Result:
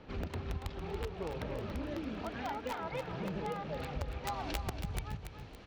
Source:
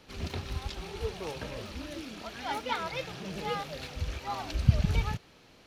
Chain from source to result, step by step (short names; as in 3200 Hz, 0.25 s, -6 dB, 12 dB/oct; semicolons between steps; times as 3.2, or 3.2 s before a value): tape spacing loss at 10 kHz 21 dB; compressor 12:1, threshold -40 dBFS, peak gain reduction 25.5 dB; wrapped overs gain 34 dB; high shelf 3700 Hz -10 dB, from 4.24 s +2.5 dB; feedback echo 0.282 s, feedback 39%, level -8.5 dB; gain +5.5 dB